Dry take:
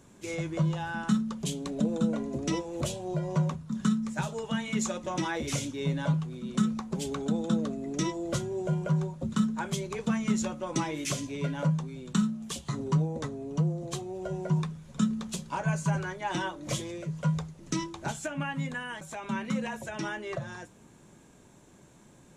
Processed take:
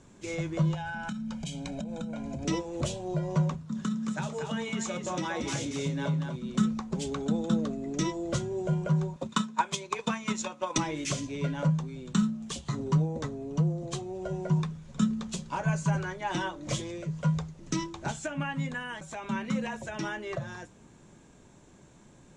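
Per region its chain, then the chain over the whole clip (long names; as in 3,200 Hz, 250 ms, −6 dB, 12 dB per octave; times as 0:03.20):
0:00.74–0:02.45: parametric band 2,400 Hz +6 dB 0.51 octaves + comb filter 1.3 ms, depth 79% + downward compressor 12 to 1, threshold −32 dBFS
0:03.55–0:06.36: high-pass filter 89 Hz + downward compressor 2.5 to 1, threshold −29 dBFS + single-tap delay 233 ms −6 dB
0:09.16–0:10.78: high-pass filter 600 Hz 6 dB per octave + hollow resonant body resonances 1,000/2,500/3,600 Hz, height 8 dB, ringing for 20 ms + transient designer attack +8 dB, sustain −4 dB
whole clip: low-pass filter 8,500 Hz 24 dB per octave; low-shelf EQ 61 Hz +6 dB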